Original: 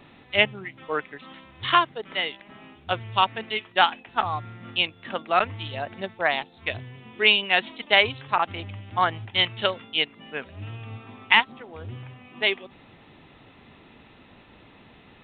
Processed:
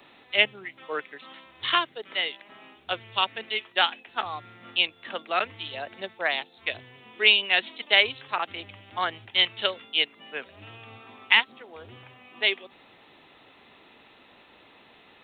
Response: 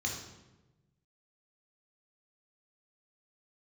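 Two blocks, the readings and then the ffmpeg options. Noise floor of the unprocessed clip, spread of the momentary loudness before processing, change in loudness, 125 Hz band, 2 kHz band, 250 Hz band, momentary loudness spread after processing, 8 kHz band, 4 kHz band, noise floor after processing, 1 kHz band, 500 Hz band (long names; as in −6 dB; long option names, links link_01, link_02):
−53 dBFS, 20 LU, −1.0 dB, −14.0 dB, −1.0 dB, −7.0 dB, 18 LU, can't be measured, +0.5 dB, −56 dBFS, −6.0 dB, −4.5 dB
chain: -filter_complex "[0:a]bass=frequency=250:gain=-14,treble=frequency=4000:gain=7,acrossover=split=140|690|1200[link_01][link_02][link_03][link_04];[link_03]acompressor=threshold=-47dB:ratio=6[link_05];[link_01][link_02][link_05][link_04]amix=inputs=4:normalize=0,volume=-1dB"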